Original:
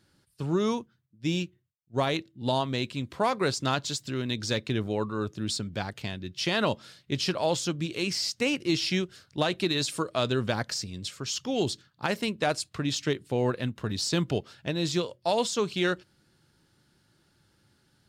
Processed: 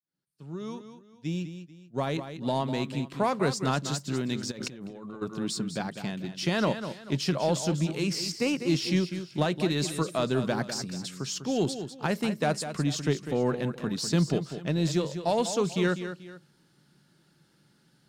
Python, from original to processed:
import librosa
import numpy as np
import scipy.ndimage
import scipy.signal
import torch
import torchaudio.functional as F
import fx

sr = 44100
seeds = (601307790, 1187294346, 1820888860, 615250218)

p1 = fx.fade_in_head(x, sr, length_s=2.95)
p2 = fx.low_shelf_res(p1, sr, hz=120.0, db=-7.5, q=3.0)
p3 = 10.0 ** (-24.5 / 20.0) * np.tanh(p2 / 10.0 ** (-24.5 / 20.0))
p4 = p2 + (p3 * 10.0 ** (-7.5 / 20.0))
p5 = fx.dynamic_eq(p4, sr, hz=3400.0, q=1.0, threshold_db=-44.0, ratio=4.0, max_db=-5)
p6 = p5 + fx.echo_multitap(p5, sr, ms=(199, 438), db=(-10.0, -19.5), dry=0)
p7 = fx.over_compress(p6, sr, threshold_db=-37.0, ratio=-1.0, at=(4.5, 5.21), fade=0.02)
y = p7 * 10.0 ** (-2.5 / 20.0)